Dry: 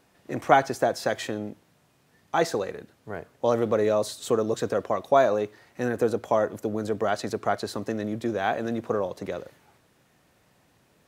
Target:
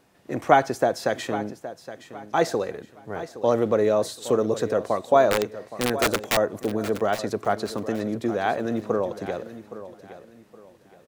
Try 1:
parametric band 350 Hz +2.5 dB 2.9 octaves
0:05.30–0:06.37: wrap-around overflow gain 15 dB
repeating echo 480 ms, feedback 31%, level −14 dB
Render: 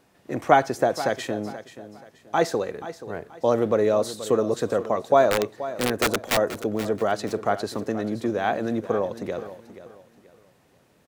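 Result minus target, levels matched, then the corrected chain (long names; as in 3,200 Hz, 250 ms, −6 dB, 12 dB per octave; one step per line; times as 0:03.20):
echo 338 ms early
parametric band 350 Hz +2.5 dB 2.9 octaves
0:05.30–0:06.37: wrap-around overflow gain 15 dB
repeating echo 818 ms, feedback 31%, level −14 dB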